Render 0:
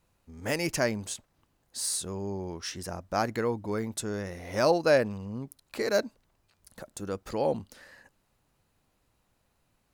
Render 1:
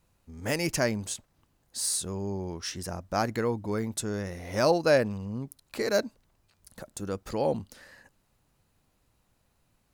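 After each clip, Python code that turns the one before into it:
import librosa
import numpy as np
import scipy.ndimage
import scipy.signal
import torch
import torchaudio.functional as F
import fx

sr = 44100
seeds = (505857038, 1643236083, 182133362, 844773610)

y = fx.bass_treble(x, sr, bass_db=3, treble_db=2)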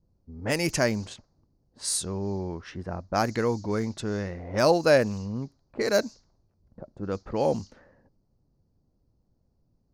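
y = fx.dmg_noise_band(x, sr, seeds[0], low_hz=4300.0, high_hz=6900.0, level_db=-55.0)
y = fx.env_lowpass(y, sr, base_hz=360.0, full_db=-24.5)
y = y * librosa.db_to_amplitude(2.5)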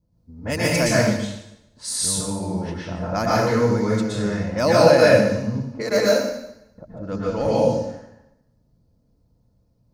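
y = fx.notch_comb(x, sr, f0_hz=390.0)
y = fx.rev_plate(y, sr, seeds[1], rt60_s=0.84, hf_ratio=0.95, predelay_ms=105, drr_db=-6.5)
y = y * librosa.db_to_amplitude(1.0)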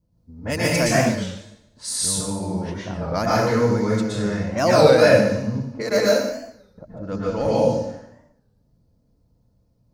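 y = fx.record_warp(x, sr, rpm=33.33, depth_cents=160.0)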